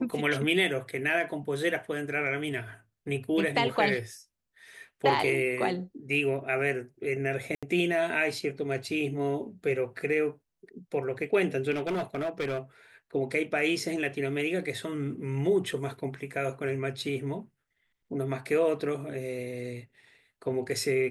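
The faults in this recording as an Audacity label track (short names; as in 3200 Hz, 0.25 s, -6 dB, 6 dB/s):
7.550000	7.630000	gap 76 ms
11.710000	12.590000	clipped -26.5 dBFS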